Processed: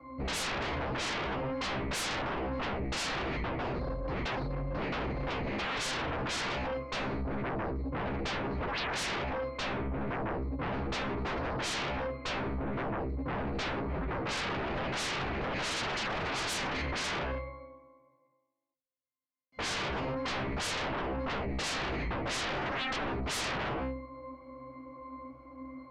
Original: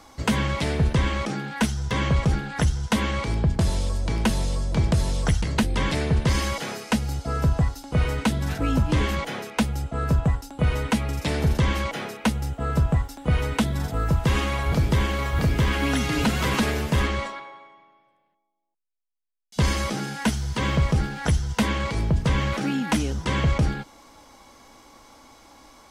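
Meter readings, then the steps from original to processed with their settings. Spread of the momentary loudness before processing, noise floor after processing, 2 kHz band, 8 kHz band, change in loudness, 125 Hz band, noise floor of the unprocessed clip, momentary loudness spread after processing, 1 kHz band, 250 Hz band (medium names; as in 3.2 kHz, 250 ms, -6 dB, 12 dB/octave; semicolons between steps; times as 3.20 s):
5 LU, -71 dBFS, -5.0 dB, -7.0 dB, -9.5 dB, -16.0 dB, -69 dBFS, 5 LU, -5.0 dB, -11.5 dB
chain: three-band isolator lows -13 dB, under 210 Hz, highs -23 dB, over 2.6 kHz; pitch-class resonator C, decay 0.73 s; sine folder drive 18 dB, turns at -34 dBFS; trim +3 dB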